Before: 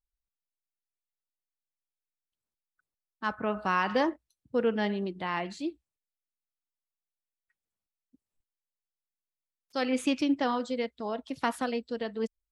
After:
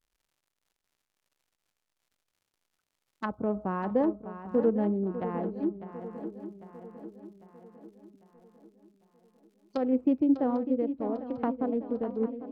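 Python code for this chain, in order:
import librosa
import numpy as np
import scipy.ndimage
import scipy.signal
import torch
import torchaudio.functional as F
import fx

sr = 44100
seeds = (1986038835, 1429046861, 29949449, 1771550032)

y = fx.wiener(x, sr, points=25)
y = fx.high_shelf(y, sr, hz=5300.0, db=10.0)
y = fx.dmg_crackle(y, sr, seeds[0], per_s=130.0, level_db=-64.0)
y = fx.env_lowpass_down(y, sr, base_hz=570.0, full_db=-31.0)
y = fx.echo_swing(y, sr, ms=799, ratio=3, feedback_pct=50, wet_db=-11.5)
y = y * 10.0 ** (3.5 / 20.0)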